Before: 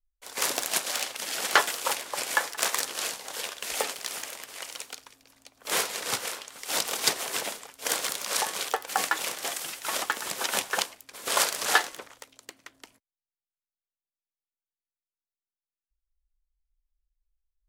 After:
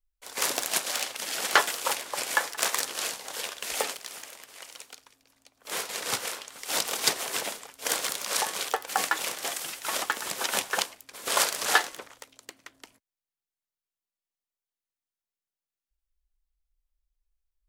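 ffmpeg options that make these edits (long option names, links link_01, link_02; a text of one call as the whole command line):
ffmpeg -i in.wav -filter_complex "[0:a]asplit=3[link_01][link_02][link_03];[link_01]atrim=end=3.972[link_04];[link_02]atrim=start=3.968:end=5.892,asetpts=PTS-STARTPTS,volume=-6dB[link_05];[link_03]atrim=start=5.888[link_06];[link_04][link_05]acrossfade=duration=0.004:curve1=hsin:curve2=hsin[link_07];[link_07][link_06]acrossfade=duration=0.004:curve1=hsin:curve2=hsin" out.wav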